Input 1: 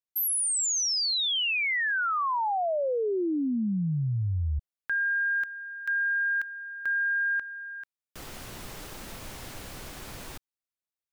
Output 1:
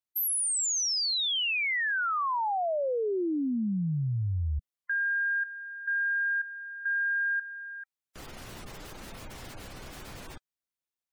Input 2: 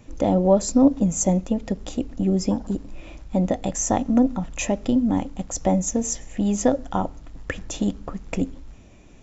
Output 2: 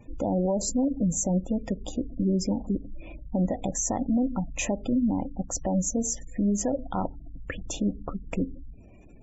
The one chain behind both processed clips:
gate on every frequency bin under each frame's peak −25 dB strong
brickwall limiter −16.5 dBFS
level −1.5 dB

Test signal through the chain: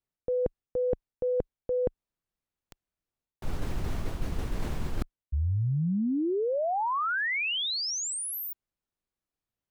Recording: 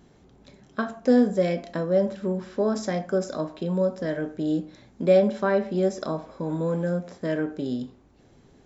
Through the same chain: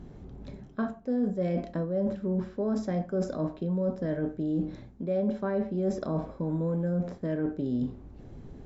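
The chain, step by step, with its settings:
spectral tilt −3 dB per octave
reversed playback
downward compressor 6 to 1, threshold −29 dBFS
reversed playback
level +2 dB

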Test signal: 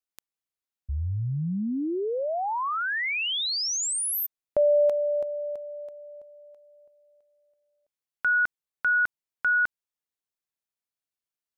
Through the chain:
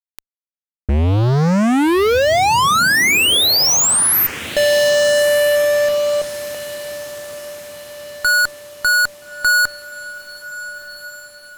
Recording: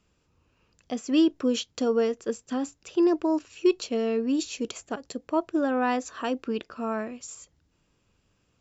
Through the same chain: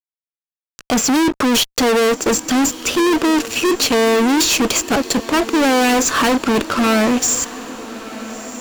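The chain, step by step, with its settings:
fuzz pedal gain 44 dB, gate −53 dBFS
feedback delay with all-pass diffusion 1,318 ms, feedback 50%, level −15 dB

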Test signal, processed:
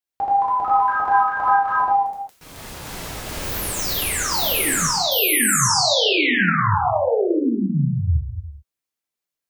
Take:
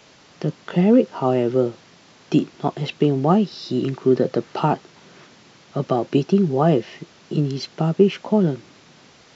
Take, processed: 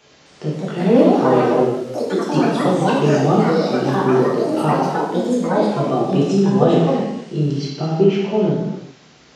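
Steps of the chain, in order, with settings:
reverb whose tail is shaped and stops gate 430 ms falling, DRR −5.5 dB
delay with pitch and tempo change per echo 260 ms, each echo +4 semitones, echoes 3
level −5 dB

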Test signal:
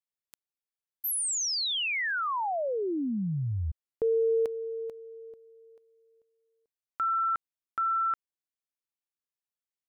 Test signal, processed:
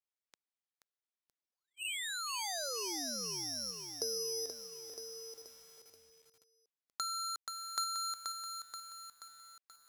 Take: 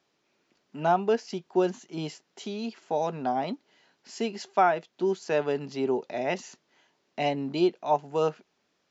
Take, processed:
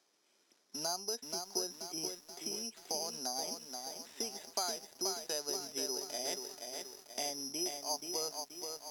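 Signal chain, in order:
bad sample-rate conversion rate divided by 8×, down filtered, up zero stuff
downward compressor 3 to 1, threshold −28 dBFS
band-pass filter 270–6,400 Hz
feedback echo at a low word length 480 ms, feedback 55%, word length 9 bits, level −5 dB
level −3.5 dB

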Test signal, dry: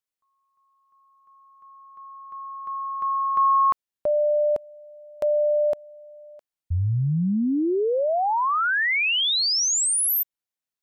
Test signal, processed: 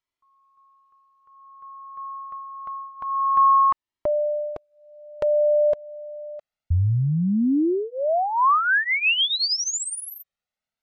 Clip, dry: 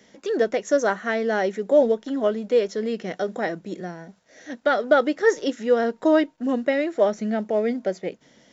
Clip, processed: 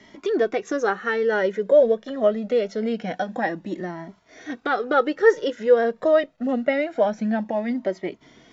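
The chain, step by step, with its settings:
Bessel low-pass filter 3,600 Hz, order 2
in parallel at +2 dB: downward compressor, threshold −32 dBFS
on the sum: flanger whose copies keep moving one way rising 0.25 Hz
level +3.5 dB

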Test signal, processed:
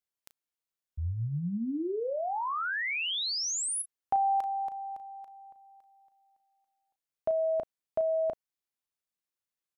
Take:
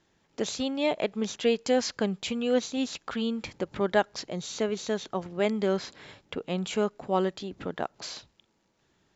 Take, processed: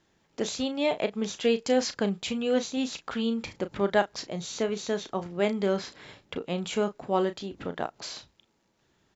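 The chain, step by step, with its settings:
double-tracking delay 35 ms −11 dB

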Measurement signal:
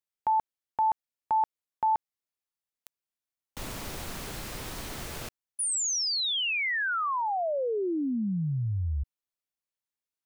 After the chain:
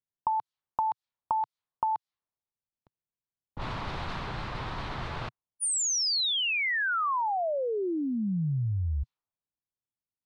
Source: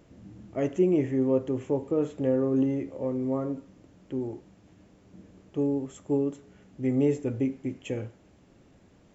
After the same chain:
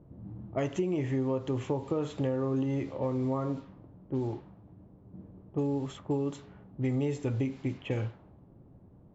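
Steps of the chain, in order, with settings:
low-pass that shuts in the quiet parts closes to 430 Hz, open at −26.5 dBFS
octave-band graphic EQ 125/250/500/1,000/4,000 Hz +5/−3/−3/+7/+10 dB
downward compressor 10 to 1, threshold −29 dBFS
level +2.5 dB

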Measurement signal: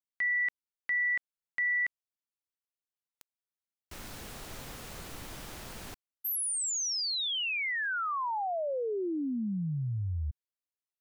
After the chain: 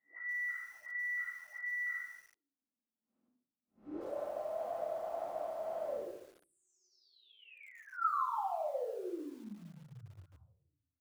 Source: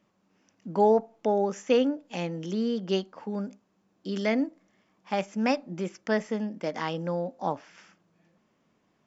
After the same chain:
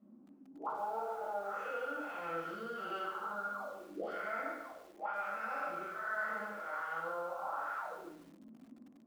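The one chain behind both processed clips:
spectrum smeared in time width 207 ms
dynamic equaliser 220 Hz, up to −6 dB, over −44 dBFS, Q 1.9
in parallel at +2.5 dB: brickwall limiter −27 dBFS
on the sum: parametric band 870 Hz +8.5 dB 2.7 octaves
envelope filter 240–1,400 Hz, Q 18, up, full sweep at −26 dBFS
reversed playback
downward compressor 4 to 1, threshold −57 dBFS
reversed playback
reverb reduction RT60 0.63 s
rectangular room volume 580 cubic metres, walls furnished, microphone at 6.7 metres
feedback echo at a low word length 144 ms, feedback 35%, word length 11 bits, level −8 dB
level +9.5 dB

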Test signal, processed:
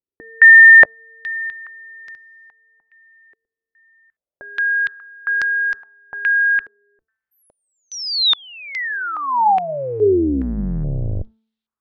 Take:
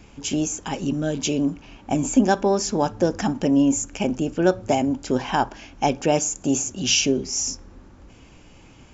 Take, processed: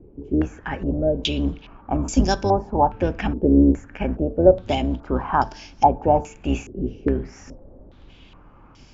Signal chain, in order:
sub-octave generator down 2 octaves, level +1 dB
hum removal 221.6 Hz, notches 8
low-pass on a step sequencer 2.4 Hz 410–5,200 Hz
level −3 dB

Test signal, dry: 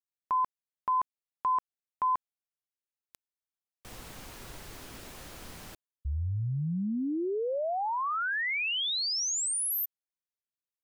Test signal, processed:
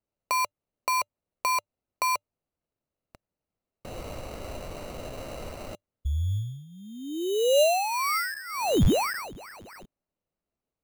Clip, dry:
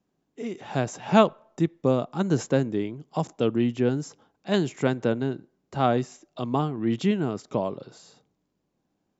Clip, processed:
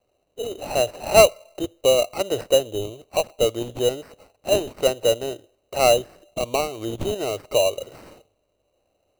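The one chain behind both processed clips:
drawn EQ curve 100 Hz 0 dB, 160 Hz −24 dB, 250 Hz −16 dB, 590 Hz +11 dB, 890 Hz −4 dB, 1,300 Hz +1 dB, 1,900 Hz −18 dB, 3,400 Hz +12 dB, 6,700 Hz −19 dB, 10,000 Hz −23 dB
in parallel at +2.5 dB: downward compressor, threshold −35 dBFS
on the sum: sample-rate reduction 3,400 Hz, jitter 0%

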